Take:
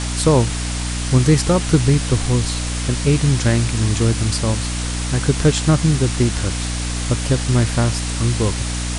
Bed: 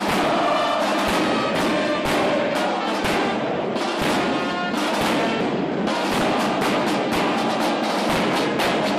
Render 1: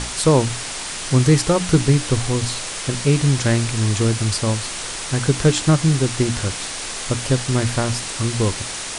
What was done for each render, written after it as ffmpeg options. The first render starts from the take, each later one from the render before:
ffmpeg -i in.wav -af "bandreject=frequency=60:width_type=h:width=6,bandreject=frequency=120:width_type=h:width=6,bandreject=frequency=180:width_type=h:width=6,bandreject=frequency=240:width_type=h:width=6,bandreject=frequency=300:width_type=h:width=6" out.wav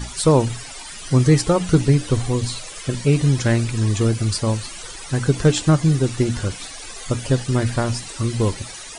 ffmpeg -i in.wav -af "afftdn=noise_reduction=15:noise_floor=-29" out.wav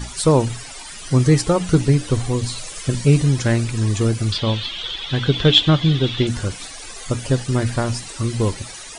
ffmpeg -i in.wav -filter_complex "[0:a]asettb=1/sr,asplit=3[link_01][link_02][link_03];[link_01]atrim=end=2.584[link_04];[link_02]atrim=start=2.58:end=3.23,asetpts=PTS-STARTPTS,afade=type=in:duration=0.004:curve=qsin,afade=type=out:start_time=0.646:duration=0.004:curve=qsin,bass=frequency=250:gain=4,treble=frequency=4000:gain=3[link_05];[link_03]atrim=start=3.226[link_06];[link_04][link_05]acrossfade=duration=0.004:curve1=hsin:curve2=qsin[link_07];[link_07][link_06]acrossfade=duration=0.004:curve1=qsin:curve2=hsin,asettb=1/sr,asplit=3[link_08][link_09][link_10];[link_08]atrim=end=4.324[link_11];[link_09]atrim=start=4.32:end=6.27,asetpts=PTS-STARTPTS,afade=type=in:duration=0.004:curve=qsin,afade=type=out:start_time=1.946:duration=0.004:curve=qsin,lowpass=frequency=3400:width_type=q:width=9.1[link_12];[link_10]atrim=start=6.266[link_13];[link_11][link_12]acrossfade=duration=0.004:curve1=hsin:curve2=qsin[link_14];[link_14][link_13]acrossfade=duration=0.004:curve1=qsin:curve2=hsin" out.wav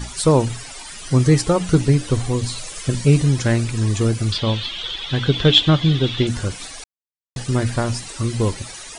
ffmpeg -i in.wav -filter_complex "[0:a]asplit=3[link_01][link_02][link_03];[link_01]atrim=end=6.84,asetpts=PTS-STARTPTS,afade=type=out:start_time=6.836:duration=0.004:curve=hsin[link_04];[link_02]atrim=start=6.84:end=7.36,asetpts=PTS-STARTPTS,volume=0[link_05];[link_03]atrim=start=7.36,asetpts=PTS-STARTPTS,afade=type=in:duration=0.004:curve=hsin[link_06];[link_04][link_05][link_06]concat=n=3:v=0:a=1" out.wav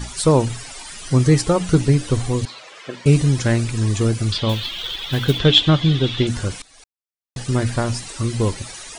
ffmpeg -i in.wav -filter_complex "[0:a]asettb=1/sr,asplit=3[link_01][link_02][link_03];[link_01]atrim=end=2.454[link_04];[link_02]atrim=start=2.45:end=3.06,asetpts=PTS-STARTPTS,afade=type=in:duration=0.004:curve=qsin,afade=type=out:start_time=0.606:duration=0.004:curve=qsin,highpass=440,lowpass=2800[link_05];[link_03]atrim=start=3.056[link_06];[link_04][link_05]acrossfade=duration=0.004:curve1=hsin:curve2=qsin[link_07];[link_07][link_06]acrossfade=duration=0.004:curve1=qsin:curve2=hsin,asettb=1/sr,asplit=3[link_08][link_09][link_10];[link_08]atrim=end=4.494[link_11];[link_09]atrim=start=4.49:end=5.39,asetpts=PTS-STARTPTS,afade=type=in:duration=0.004:curve=qsin,afade=type=out:start_time=0.896:duration=0.004:curve=qsin,acrusher=bits=5:mode=log:mix=0:aa=0.000001[link_12];[link_10]atrim=start=5.386[link_13];[link_11][link_12]acrossfade=duration=0.004:curve1=hsin:curve2=qsin[link_14];[link_14][link_13]acrossfade=duration=0.004:curve1=qsin:curve2=hsin,asplit=2[link_15][link_16];[link_15]atrim=end=6.62,asetpts=PTS-STARTPTS,afade=type=out:start_time=6.616:duration=0.004:curve=hsin:silence=0.0891251[link_17];[link_16]atrim=start=6.62,asetpts=PTS-STARTPTS,afade=type=in:duration=0.88:silence=0.0891251[link_18];[link_17][link_18]concat=n=2:v=0:a=1" out.wav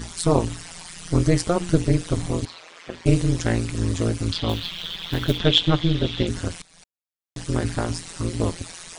ffmpeg -i in.wav -af "tremolo=f=170:d=1" out.wav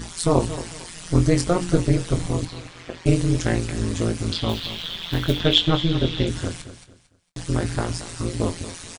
ffmpeg -i in.wav -filter_complex "[0:a]asplit=2[link_01][link_02];[link_02]adelay=23,volume=-9dB[link_03];[link_01][link_03]amix=inputs=2:normalize=0,aecho=1:1:226|452|678:0.211|0.0634|0.019" out.wav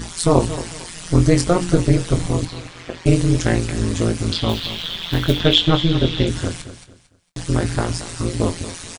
ffmpeg -i in.wav -af "volume=4dB,alimiter=limit=-1dB:level=0:latency=1" out.wav

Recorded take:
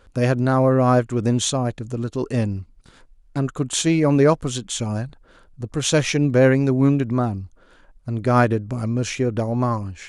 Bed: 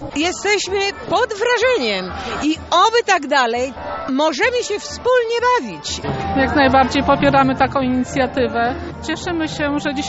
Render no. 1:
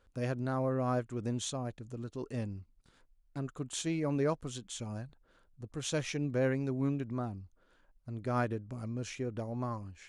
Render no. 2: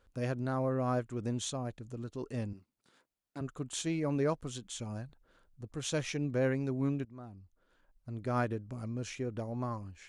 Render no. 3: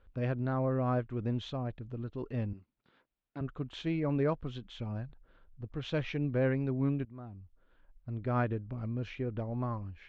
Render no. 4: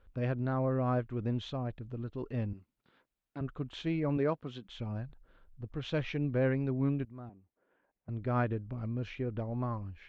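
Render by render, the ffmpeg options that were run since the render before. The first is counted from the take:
ffmpeg -i in.wav -af "volume=-15.5dB" out.wav
ffmpeg -i in.wav -filter_complex "[0:a]asettb=1/sr,asplit=3[link_01][link_02][link_03];[link_01]atrim=end=2.534[link_04];[link_02]atrim=start=2.53:end=3.41,asetpts=PTS-STARTPTS,afade=type=in:duration=0.004:curve=qsin,afade=type=out:start_time=0.876:duration=0.004:curve=qsin,highpass=220[link_05];[link_03]atrim=start=3.406[link_06];[link_04][link_05]acrossfade=duration=0.004:curve1=hsin:curve2=qsin[link_07];[link_07][link_06]acrossfade=duration=0.004:curve1=qsin:curve2=hsin,asplit=2[link_08][link_09];[link_08]atrim=end=7.05,asetpts=PTS-STARTPTS,afade=type=out:start_time=7.046:duration=0.004:curve=hsin:silence=0.141254[link_10];[link_09]atrim=start=7.05,asetpts=PTS-STARTPTS,afade=type=in:duration=1.09:silence=0.141254[link_11];[link_10][link_11]concat=n=2:v=0:a=1" out.wav
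ffmpeg -i in.wav -af "lowpass=frequency=3500:width=0.5412,lowpass=frequency=3500:width=1.3066,lowshelf=frequency=87:gain=9.5" out.wav
ffmpeg -i in.wav -filter_complex "[0:a]asettb=1/sr,asplit=3[link_01][link_02][link_03];[link_01]atrim=end=4.174[link_04];[link_02]atrim=start=4.17:end=4.69,asetpts=PTS-STARTPTS,afade=type=in:duration=0.004:curve=qsin,afade=type=out:start_time=0.516:duration=0.004:curve=qsin,highpass=160[link_05];[link_03]atrim=start=4.686[link_06];[link_04][link_05]acrossfade=duration=0.004:curve1=hsin:curve2=qsin[link_07];[link_07][link_06]acrossfade=duration=0.004:curve1=qsin:curve2=hsin,asettb=1/sr,asplit=3[link_08][link_09][link_10];[link_08]atrim=end=7.294[link_11];[link_09]atrim=start=7.29:end=8.09,asetpts=PTS-STARTPTS,afade=type=in:duration=0.004:curve=qsin,afade=type=out:start_time=0.796:duration=0.004:curve=qsin,highpass=240,equalizer=frequency=420:width_type=q:width=4:gain=4,equalizer=frequency=750:width_type=q:width=4:gain=3,equalizer=frequency=1300:width_type=q:width=4:gain=-6,lowpass=frequency=2400:width=0.5412,lowpass=frequency=2400:width=1.3066[link_12];[link_10]atrim=start=8.086[link_13];[link_11][link_12]acrossfade=duration=0.004:curve1=hsin:curve2=qsin[link_14];[link_14][link_13]acrossfade=duration=0.004:curve1=qsin:curve2=hsin" out.wav

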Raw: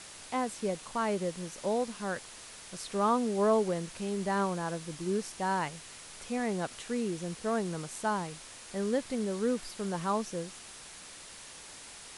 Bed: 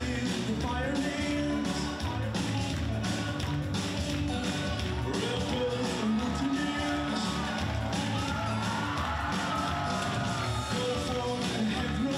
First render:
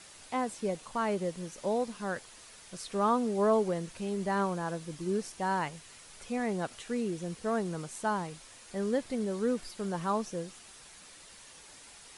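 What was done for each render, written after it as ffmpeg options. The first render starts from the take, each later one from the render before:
ffmpeg -i in.wav -af "afftdn=noise_reduction=6:noise_floor=-49" out.wav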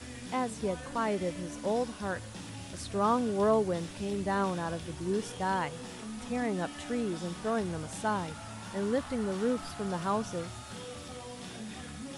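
ffmpeg -i in.wav -i bed.wav -filter_complex "[1:a]volume=-13dB[link_01];[0:a][link_01]amix=inputs=2:normalize=0" out.wav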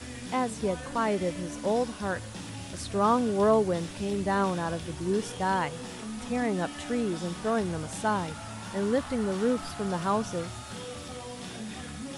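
ffmpeg -i in.wav -af "volume=3.5dB" out.wav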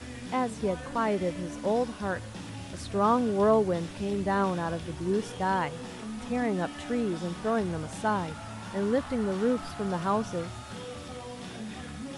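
ffmpeg -i in.wav -af "highshelf=frequency=4700:gain=-7" out.wav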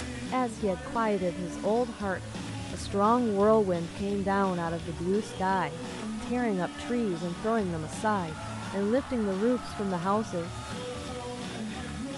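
ffmpeg -i in.wav -af "acompressor=mode=upward:threshold=-30dB:ratio=2.5" out.wav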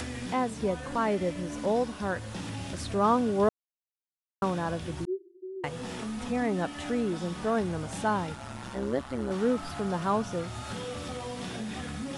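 ffmpeg -i in.wav -filter_complex "[0:a]asettb=1/sr,asplit=3[link_01][link_02][link_03];[link_01]atrim=end=5.054[link_04];[link_02]atrim=start=5.05:end=5.64,asetpts=PTS-STARTPTS,afade=type=in:duration=0.004:curve=qsin,afade=type=out:start_time=0.586:duration=0.004:curve=qsin,asuperpass=centerf=360:order=12:qfactor=6.6[link_05];[link_03]atrim=start=5.636[link_06];[link_04][link_05]acrossfade=duration=0.004:curve1=hsin:curve2=qsin[link_07];[link_07][link_06]acrossfade=duration=0.004:curve1=qsin:curve2=hsin,asettb=1/sr,asplit=3[link_08][link_09][link_10];[link_08]atrim=end=8.354[link_11];[link_09]atrim=start=8.35:end=9.31,asetpts=PTS-STARTPTS,afade=type=in:duration=0.004:curve=qsin,afade=type=out:start_time=0.956:duration=0.004:curve=qsin,tremolo=f=130:d=0.824[link_12];[link_10]atrim=start=9.306[link_13];[link_11][link_12]acrossfade=duration=0.004:curve1=hsin:curve2=qsin[link_14];[link_14][link_13]acrossfade=duration=0.004:curve1=qsin:curve2=hsin,asplit=3[link_15][link_16][link_17];[link_15]atrim=end=3.49,asetpts=PTS-STARTPTS,afade=type=out:start_time=3.486:duration=0.004:curve=hsin[link_18];[link_16]atrim=start=3.49:end=4.42,asetpts=PTS-STARTPTS,volume=0[link_19];[link_17]atrim=start=4.42,asetpts=PTS-STARTPTS,afade=type=in:duration=0.004:curve=hsin[link_20];[link_18][link_19][link_20]concat=n=3:v=0:a=1" out.wav

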